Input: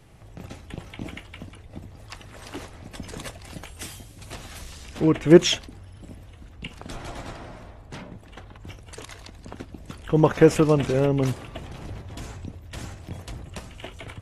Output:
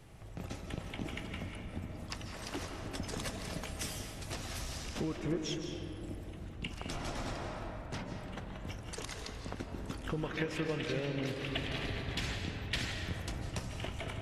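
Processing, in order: dynamic bell 5.4 kHz, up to +5 dB, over -57 dBFS, Q 2.4; compression 12:1, threshold -31 dBFS, peak gain reduction 24.5 dB; 10.18–12.92 s: high-order bell 2.7 kHz +11 dB; algorithmic reverb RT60 3.1 s, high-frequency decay 0.35×, pre-delay 115 ms, DRR 3 dB; trim -3 dB

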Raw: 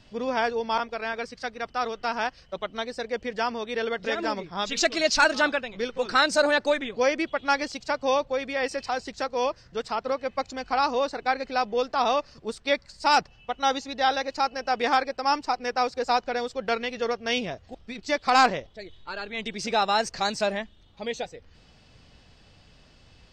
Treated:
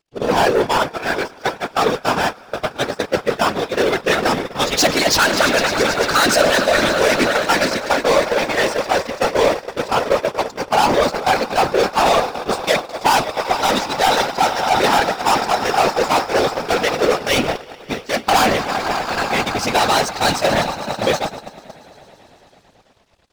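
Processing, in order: de-hum 146.4 Hz, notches 2; on a send: echo with a slow build-up 111 ms, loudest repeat 5, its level -16.5 dB; on the sum: waveshaping leveller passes 5; whisper effect; gate -14 dBFS, range -21 dB; trim -1.5 dB

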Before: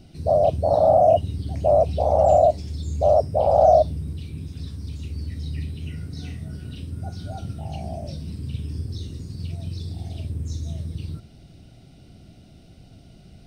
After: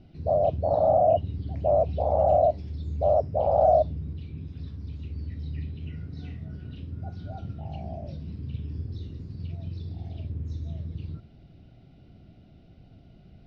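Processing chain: distance through air 270 m; trim -4 dB

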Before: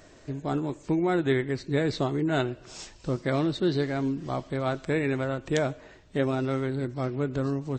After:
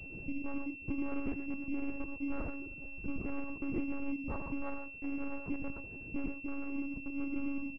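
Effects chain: local Wiener filter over 41 samples; hum notches 60/120 Hz; comb 0.9 ms, depth 55%; compression 5:1, threshold -39 dBFS, peak gain reduction 17 dB; trance gate "xxxxxxx..xxxxxx." 170 bpm -60 dB; delay 76 ms -20 dB; gated-style reverb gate 150 ms rising, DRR 2 dB; monotone LPC vocoder at 8 kHz 280 Hz; class-D stage that switches slowly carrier 2.7 kHz; trim +3.5 dB

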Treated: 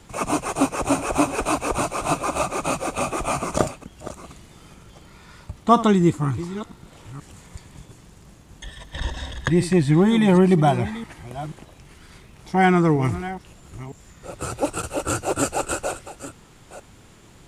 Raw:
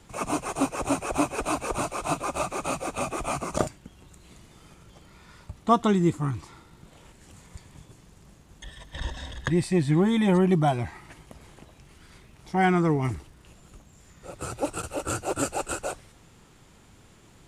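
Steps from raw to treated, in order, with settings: chunks repeated in reverse 480 ms, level -14 dB; trim +5 dB

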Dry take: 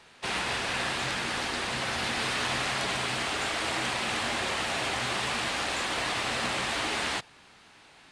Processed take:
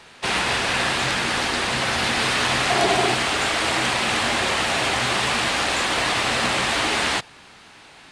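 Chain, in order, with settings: 2.70–3.14 s: small resonant body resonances 370/700 Hz, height 13 dB; trim +8.5 dB

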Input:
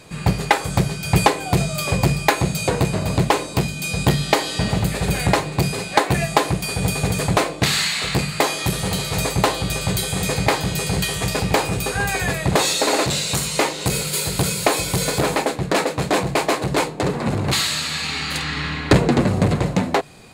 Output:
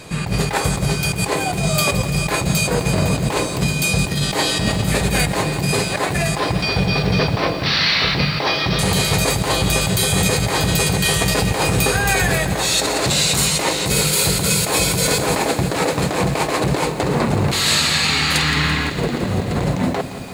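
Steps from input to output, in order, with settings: 6.35–8.79 s: Chebyshev low-pass 5.8 kHz, order 8; compressor with a negative ratio -23 dBFS, ratio -1; bit-crushed delay 169 ms, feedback 80%, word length 7-bit, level -13 dB; trim +4.5 dB

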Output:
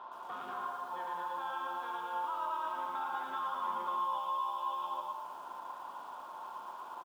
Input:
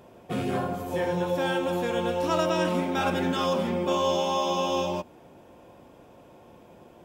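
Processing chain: high-order bell 1 kHz +15 dB 1.3 oct; peak limiter -12.5 dBFS, peak gain reduction 9 dB; compression 12:1, threshold -33 dBFS, peak gain reduction 16.5 dB; added noise violet -52 dBFS; cabinet simulation 440–3800 Hz, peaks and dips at 470 Hz -5 dB, 720 Hz -8 dB, 1 kHz +8 dB, 1.5 kHz +3 dB, 2.4 kHz -4 dB, 3.4 kHz +7 dB; bouncing-ball echo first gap 110 ms, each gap 0.75×, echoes 5; bit-crushed delay 115 ms, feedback 55%, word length 8-bit, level -11 dB; trim -5.5 dB

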